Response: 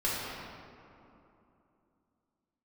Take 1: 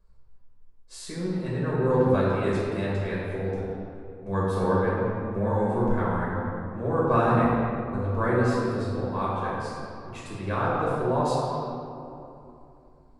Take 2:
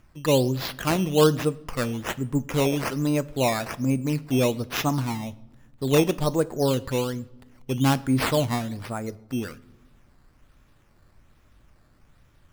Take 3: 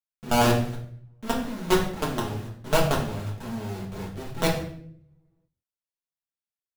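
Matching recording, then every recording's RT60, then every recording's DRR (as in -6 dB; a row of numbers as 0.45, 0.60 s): 1; 2.9 s, not exponential, 0.60 s; -7.0, 15.0, -3.5 dB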